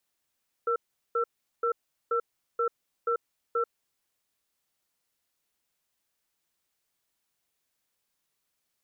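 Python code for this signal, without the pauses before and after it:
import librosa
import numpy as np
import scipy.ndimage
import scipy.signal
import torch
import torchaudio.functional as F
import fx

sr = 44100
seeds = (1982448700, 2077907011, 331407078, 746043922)

y = fx.cadence(sr, length_s=3.27, low_hz=469.0, high_hz=1340.0, on_s=0.09, off_s=0.39, level_db=-26.5)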